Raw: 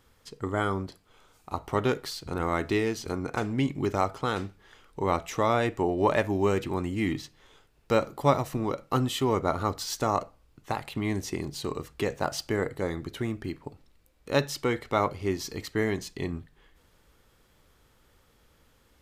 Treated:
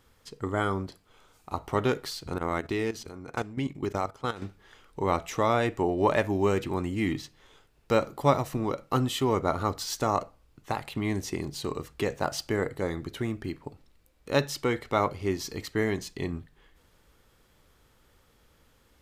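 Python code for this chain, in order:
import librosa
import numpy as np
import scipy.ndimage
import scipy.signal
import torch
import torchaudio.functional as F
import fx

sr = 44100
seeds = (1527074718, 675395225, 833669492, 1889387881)

y = fx.level_steps(x, sr, step_db=14, at=(2.38, 4.42))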